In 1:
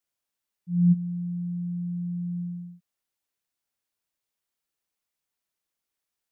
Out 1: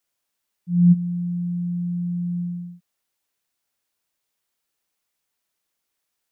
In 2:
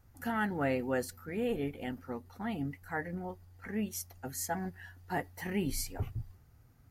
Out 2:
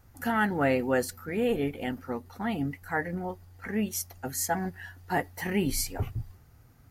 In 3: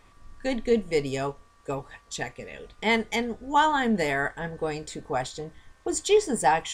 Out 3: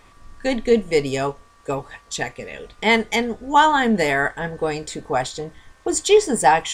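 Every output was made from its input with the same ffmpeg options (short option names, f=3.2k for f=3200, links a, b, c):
-af "lowshelf=f=220:g=-3,volume=7dB"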